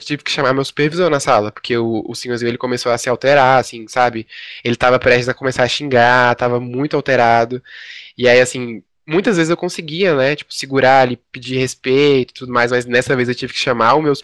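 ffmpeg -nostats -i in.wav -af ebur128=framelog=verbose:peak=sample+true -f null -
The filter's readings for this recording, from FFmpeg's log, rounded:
Integrated loudness:
  I:         -14.9 LUFS
  Threshold: -25.2 LUFS
Loudness range:
  LRA:         2.4 LU
  Threshold: -35.2 LUFS
  LRA low:   -16.4 LUFS
  LRA high:  -14.0 LUFS
Sample peak:
  Peak:       -1.2 dBFS
True peak:
  Peak:       -1.2 dBFS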